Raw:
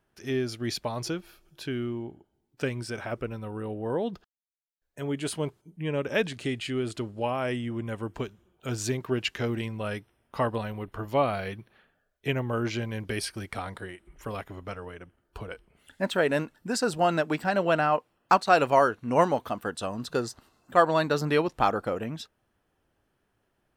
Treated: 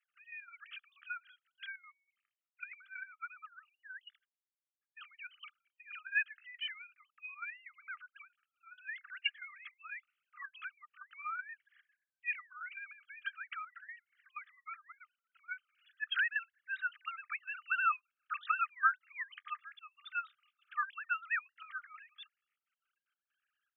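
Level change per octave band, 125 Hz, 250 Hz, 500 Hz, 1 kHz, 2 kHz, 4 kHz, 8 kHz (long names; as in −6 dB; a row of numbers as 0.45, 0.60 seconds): below −40 dB, below −40 dB, below −40 dB, −12.5 dB, −3.0 dB, −9.5 dB, below −40 dB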